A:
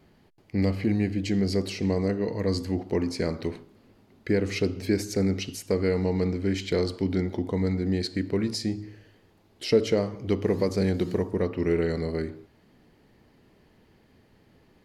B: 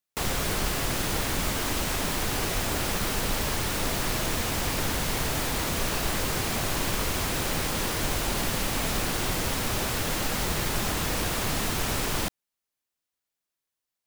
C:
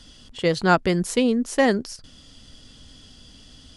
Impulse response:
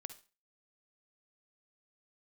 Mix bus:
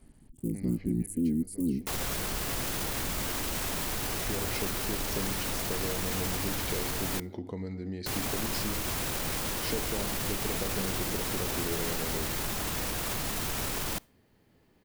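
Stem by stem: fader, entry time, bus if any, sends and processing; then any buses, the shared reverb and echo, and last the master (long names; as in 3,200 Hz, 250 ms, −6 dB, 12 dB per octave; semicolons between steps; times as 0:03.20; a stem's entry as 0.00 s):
−6.0 dB, 0.00 s, no send, downward compressor, threshold −27 dBFS, peak gain reduction 11.5 dB; automatic ducking −15 dB, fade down 1.50 s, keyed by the third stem
+0.5 dB, 1.70 s, muted 0:07.20–0:08.06, send −12 dB, high-shelf EQ 9,700 Hz +6 dB; brickwall limiter −25 dBFS, peak gain reduction 11.5 dB
−3.5 dB, 0.00 s, no send, sub-harmonics by changed cycles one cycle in 3, muted; elliptic band-stop filter 290–9,300 Hz, stop band 40 dB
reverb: on, RT60 0.35 s, pre-delay 46 ms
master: no processing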